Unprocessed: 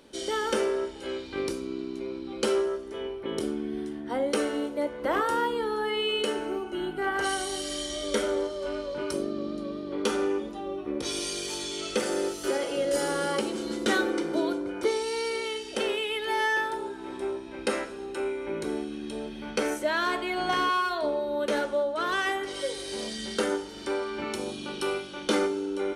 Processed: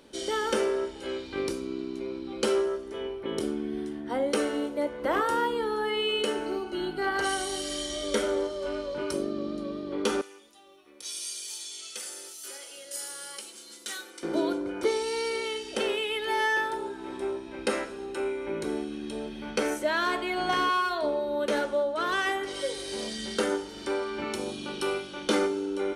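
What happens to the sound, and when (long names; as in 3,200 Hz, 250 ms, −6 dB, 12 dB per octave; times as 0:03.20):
0:06.46–0:07.21: parametric band 4,400 Hz +15 dB 0.24 octaves
0:10.21–0:14.23: first-order pre-emphasis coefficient 0.97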